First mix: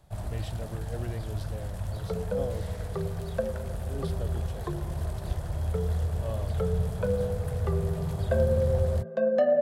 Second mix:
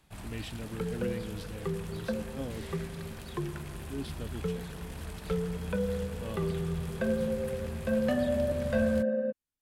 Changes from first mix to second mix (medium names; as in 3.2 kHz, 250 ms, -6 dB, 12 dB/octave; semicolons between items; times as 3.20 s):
first sound: add bass shelf 270 Hz -8 dB; second sound: entry -1.30 s; master: add fifteen-band graphic EQ 100 Hz -7 dB, 250 Hz +8 dB, 630 Hz -11 dB, 2.5 kHz +7 dB